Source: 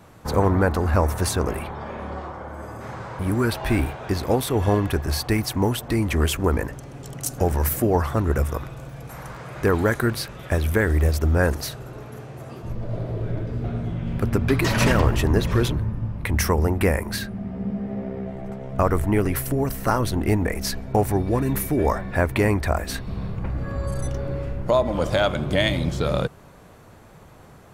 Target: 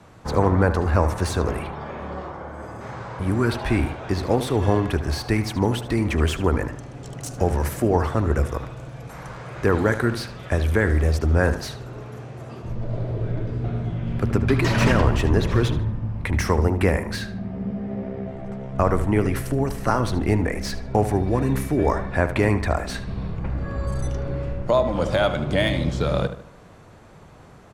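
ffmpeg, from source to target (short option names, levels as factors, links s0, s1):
-filter_complex "[0:a]lowpass=8300,acrossover=split=170|1500|2600[s0][s1][s2][s3];[s3]asoftclip=type=tanh:threshold=0.0376[s4];[s0][s1][s2][s4]amix=inputs=4:normalize=0,asplit=2[s5][s6];[s6]adelay=75,lowpass=f=4100:p=1,volume=0.282,asplit=2[s7][s8];[s8]adelay=75,lowpass=f=4100:p=1,volume=0.41,asplit=2[s9][s10];[s10]adelay=75,lowpass=f=4100:p=1,volume=0.41,asplit=2[s11][s12];[s12]adelay=75,lowpass=f=4100:p=1,volume=0.41[s13];[s5][s7][s9][s11][s13]amix=inputs=5:normalize=0" -ar 44100 -c:a libmp3lame -b:a 320k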